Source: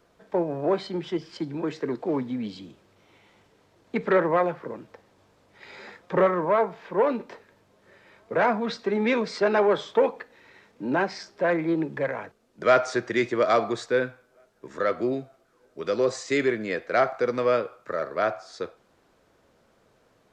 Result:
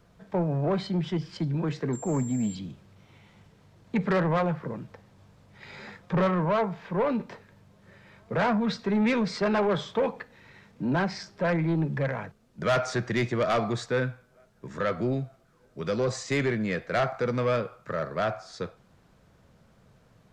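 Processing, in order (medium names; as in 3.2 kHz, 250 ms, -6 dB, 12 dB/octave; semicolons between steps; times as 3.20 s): resonant low shelf 230 Hz +9.5 dB, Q 1.5; saturation -19 dBFS, distortion -13 dB; 1.93–2.55 s: class-D stage that switches slowly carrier 7.4 kHz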